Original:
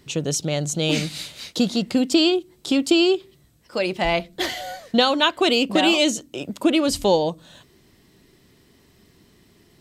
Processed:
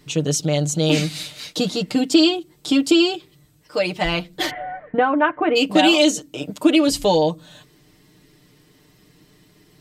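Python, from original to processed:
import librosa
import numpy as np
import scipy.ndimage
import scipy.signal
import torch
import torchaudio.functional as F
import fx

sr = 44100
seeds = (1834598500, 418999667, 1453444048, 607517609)

y = fx.steep_lowpass(x, sr, hz=2100.0, slope=36, at=(4.49, 5.55), fade=0.02)
y = y + 0.78 * np.pad(y, (int(6.6 * sr / 1000.0), 0))[:len(y)]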